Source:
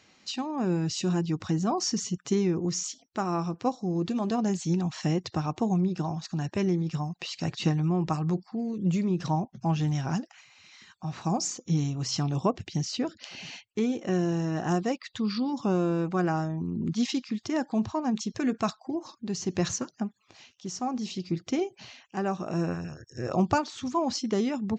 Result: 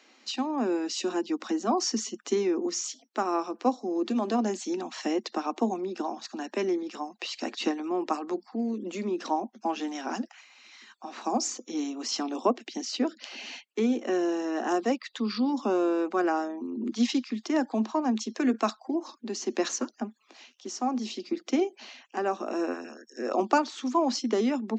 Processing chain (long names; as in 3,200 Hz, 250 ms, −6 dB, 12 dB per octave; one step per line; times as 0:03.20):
Butterworth high-pass 220 Hz 96 dB per octave
high-shelf EQ 5,300 Hz −4.5 dB
level +2.5 dB